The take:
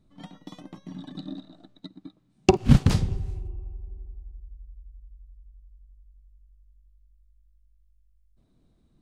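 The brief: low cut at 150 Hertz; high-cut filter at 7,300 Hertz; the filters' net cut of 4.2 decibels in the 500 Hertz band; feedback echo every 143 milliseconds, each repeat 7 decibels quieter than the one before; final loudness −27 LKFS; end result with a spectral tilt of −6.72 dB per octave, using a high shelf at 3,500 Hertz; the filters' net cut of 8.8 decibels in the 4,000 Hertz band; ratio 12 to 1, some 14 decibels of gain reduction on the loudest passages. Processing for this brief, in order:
high-pass filter 150 Hz
low-pass filter 7,300 Hz
parametric band 500 Hz −6.5 dB
high-shelf EQ 3,500 Hz −8.5 dB
parametric band 4,000 Hz −6 dB
downward compressor 12 to 1, threshold −30 dBFS
repeating echo 143 ms, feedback 45%, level −7 dB
level +14.5 dB

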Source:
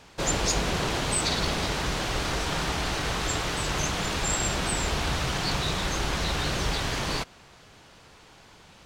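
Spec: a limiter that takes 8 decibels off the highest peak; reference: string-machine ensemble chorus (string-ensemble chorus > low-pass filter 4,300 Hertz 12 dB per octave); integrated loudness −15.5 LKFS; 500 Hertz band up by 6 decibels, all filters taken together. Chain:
parametric band 500 Hz +7.5 dB
brickwall limiter −19 dBFS
string-ensemble chorus
low-pass filter 4,300 Hz 12 dB per octave
level +17 dB

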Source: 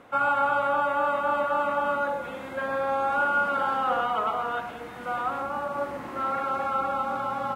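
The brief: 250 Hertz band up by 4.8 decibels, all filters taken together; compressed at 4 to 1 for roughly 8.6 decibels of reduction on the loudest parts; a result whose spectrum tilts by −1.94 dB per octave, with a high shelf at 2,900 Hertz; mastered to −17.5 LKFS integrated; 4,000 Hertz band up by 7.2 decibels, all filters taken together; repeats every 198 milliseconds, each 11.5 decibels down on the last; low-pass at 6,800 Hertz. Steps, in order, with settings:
low-pass filter 6,800 Hz
parametric band 250 Hz +5.5 dB
high-shelf EQ 2,900 Hz +4 dB
parametric band 4,000 Hz +7.5 dB
downward compressor 4 to 1, threshold −30 dBFS
repeating echo 198 ms, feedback 27%, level −11.5 dB
level +14.5 dB

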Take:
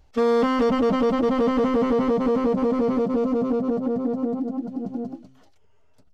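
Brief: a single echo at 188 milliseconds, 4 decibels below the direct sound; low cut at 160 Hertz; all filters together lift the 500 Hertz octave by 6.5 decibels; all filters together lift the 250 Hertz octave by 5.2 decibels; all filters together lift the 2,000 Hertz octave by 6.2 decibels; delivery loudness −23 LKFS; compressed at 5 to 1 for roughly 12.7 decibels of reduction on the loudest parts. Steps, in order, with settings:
high-pass filter 160 Hz
parametric band 250 Hz +5 dB
parametric band 500 Hz +5.5 dB
parametric band 2,000 Hz +7 dB
downward compressor 5 to 1, threshold −26 dBFS
single-tap delay 188 ms −4 dB
level +4 dB

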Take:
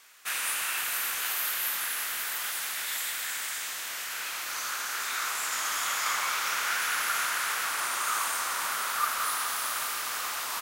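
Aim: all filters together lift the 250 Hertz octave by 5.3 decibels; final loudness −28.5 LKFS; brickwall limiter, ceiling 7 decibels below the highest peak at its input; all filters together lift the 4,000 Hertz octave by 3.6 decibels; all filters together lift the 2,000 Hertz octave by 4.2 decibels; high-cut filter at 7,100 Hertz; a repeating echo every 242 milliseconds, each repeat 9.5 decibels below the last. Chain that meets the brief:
low-pass filter 7,100 Hz
parametric band 250 Hz +7 dB
parametric band 2,000 Hz +4.5 dB
parametric band 4,000 Hz +3.5 dB
brickwall limiter −19.5 dBFS
repeating echo 242 ms, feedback 33%, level −9.5 dB
level −0.5 dB

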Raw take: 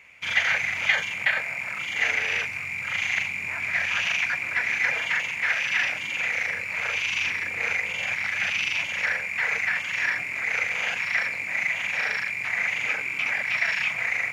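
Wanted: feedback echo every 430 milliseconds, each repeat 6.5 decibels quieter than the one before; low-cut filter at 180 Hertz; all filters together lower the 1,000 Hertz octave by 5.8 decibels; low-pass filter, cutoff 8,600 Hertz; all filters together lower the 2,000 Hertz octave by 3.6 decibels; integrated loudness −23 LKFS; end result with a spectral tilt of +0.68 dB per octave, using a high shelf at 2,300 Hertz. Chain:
high-pass filter 180 Hz
low-pass filter 8,600 Hz
parametric band 1,000 Hz −7.5 dB
parametric band 2,000 Hz −6.5 dB
high-shelf EQ 2,300 Hz +7 dB
repeating echo 430 ms, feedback 47%, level −6.5 dB
level +3 dB

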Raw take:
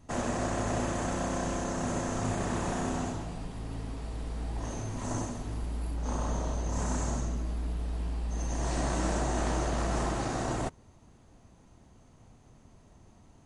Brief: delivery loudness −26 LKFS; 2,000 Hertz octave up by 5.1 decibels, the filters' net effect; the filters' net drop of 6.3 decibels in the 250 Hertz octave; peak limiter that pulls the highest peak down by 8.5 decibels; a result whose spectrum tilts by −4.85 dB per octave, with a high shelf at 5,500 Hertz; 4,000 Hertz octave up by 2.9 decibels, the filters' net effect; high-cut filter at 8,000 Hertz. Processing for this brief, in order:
low-pass filter 8,000 Hz
parametric band 250 Hz −8.5 dB
parametric band 2,000 Hz +6.5 dB
parametric band 4,000 Hz +5 dB
high-shelf EQ 5,500 Hz −7.5 dB
level +11.5 dB
brickwall limiter −16 dBFS

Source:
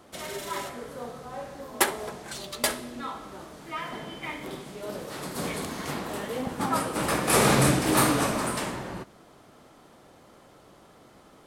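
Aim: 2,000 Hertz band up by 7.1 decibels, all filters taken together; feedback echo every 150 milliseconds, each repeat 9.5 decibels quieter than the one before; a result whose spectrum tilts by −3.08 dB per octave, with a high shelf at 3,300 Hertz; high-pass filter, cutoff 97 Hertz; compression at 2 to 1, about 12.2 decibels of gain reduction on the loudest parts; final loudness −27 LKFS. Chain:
high-pass filter 97 Hz
parametric band 2,000 Hz +6.5 dB
high-shelf EQ 3,300 Hz +7 dB
downward compressor 2 to 1, threshold −37 dBFS
repeating echo 150 ms, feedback 33%, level −9.5 dB
level +6.5 dB

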